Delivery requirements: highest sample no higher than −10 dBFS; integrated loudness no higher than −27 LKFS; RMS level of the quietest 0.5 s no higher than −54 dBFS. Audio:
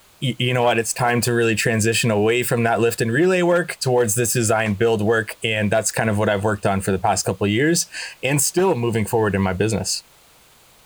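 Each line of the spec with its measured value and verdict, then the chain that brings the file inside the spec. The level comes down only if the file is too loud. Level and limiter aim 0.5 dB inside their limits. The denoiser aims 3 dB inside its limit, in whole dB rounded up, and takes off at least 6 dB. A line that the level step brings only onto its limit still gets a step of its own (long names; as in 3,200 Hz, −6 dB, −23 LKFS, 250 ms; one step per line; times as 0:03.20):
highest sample −3.5 dBFS: out of spec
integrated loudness −19.5 LKFS: out of spec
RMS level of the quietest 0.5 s −52 dBFS: out of spec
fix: level −8 dB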